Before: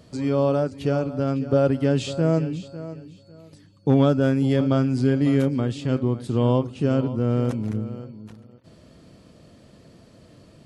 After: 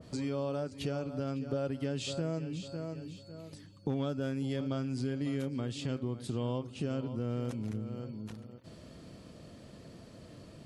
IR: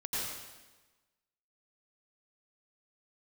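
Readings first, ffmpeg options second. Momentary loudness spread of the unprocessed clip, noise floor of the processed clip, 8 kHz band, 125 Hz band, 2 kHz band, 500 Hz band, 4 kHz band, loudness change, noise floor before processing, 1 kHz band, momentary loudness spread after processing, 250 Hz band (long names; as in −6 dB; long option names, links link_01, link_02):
12 LU, −53 dBFS, can't be measured, −13.5 dB, −11.5 dB, −14.0 dB, −6.5 dB, −14.0 dB, −52 dBFS, −14.0 dB, 17 LU, −13.5 dB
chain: -af "acompressor=threshold=-35dB:ratio=3,adynamicequalizer=threshold=0.002:dfrequency=2100:dqfactor=0.7:tfrequency=2100:tqfactor=0.7:attack=5:release=100:ratio=0.375:range=3:mode=boostabove:tftype=highshelf,volume=-1dB"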